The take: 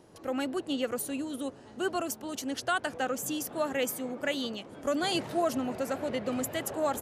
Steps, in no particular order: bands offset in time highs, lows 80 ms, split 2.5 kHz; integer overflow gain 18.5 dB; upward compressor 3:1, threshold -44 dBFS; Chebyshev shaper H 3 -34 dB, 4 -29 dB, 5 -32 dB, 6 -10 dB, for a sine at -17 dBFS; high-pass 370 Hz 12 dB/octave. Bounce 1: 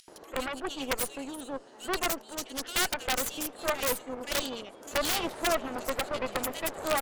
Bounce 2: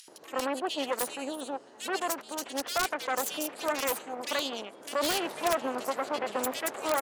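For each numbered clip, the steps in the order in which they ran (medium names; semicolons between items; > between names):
high-pass > upward compressor > bands offset in time > Chebyshev shaper > integer overflow; Chebyshev shaper > bands offset in time > upward compressor > high-pass > integer overflow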